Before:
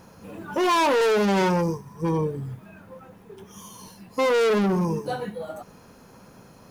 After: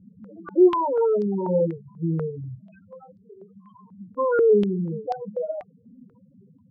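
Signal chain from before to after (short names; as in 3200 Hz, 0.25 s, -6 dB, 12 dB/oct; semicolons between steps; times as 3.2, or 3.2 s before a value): loudest bins only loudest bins 4; stepped low-pass 4.1 Hz 250–4800 Hz; gain -2 dB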